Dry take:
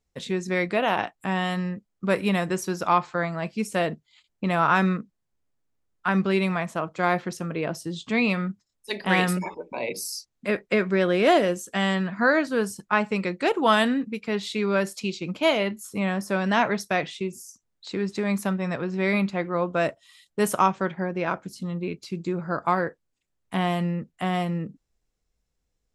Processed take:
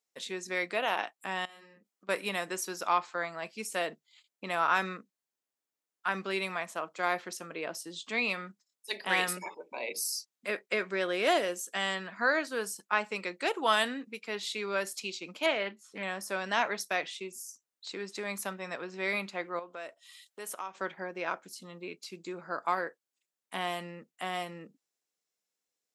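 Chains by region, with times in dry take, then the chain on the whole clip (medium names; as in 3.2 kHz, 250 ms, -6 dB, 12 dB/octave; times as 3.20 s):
1.45–2.09 s: doubling 41 ms -2 dB + compression 16:1, threshold -41 dBFS
15.46–16.03 s: low-pass 3.6 kHz + loudspeaker Doppler distortion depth 0.17 ms
19.59–20.75 s: tone controls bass -5 dB, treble -2 dB + compression 2:1, threshold -38 dBFS + tape noise reduction on one side only encoder only
whole clip: high-pass 290 Hz 12 dB/octave; tilt EQ +2 dB/octave; trim -6.5 dB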